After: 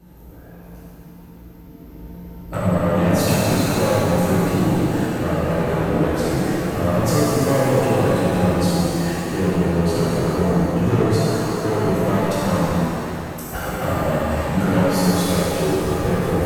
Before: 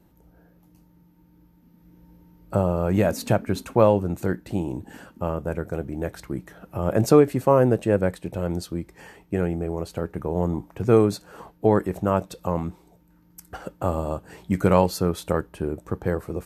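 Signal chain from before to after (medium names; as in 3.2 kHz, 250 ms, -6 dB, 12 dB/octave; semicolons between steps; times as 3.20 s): compression, threshold -24 dBFS, peak gain reduction 13.5 dB; saturation -27.5 dBFS, distortion -8 dB; pitch-shifted reverb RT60 3.1 s, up +7 st, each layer -8 dB, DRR -10 dB; trim +5 dB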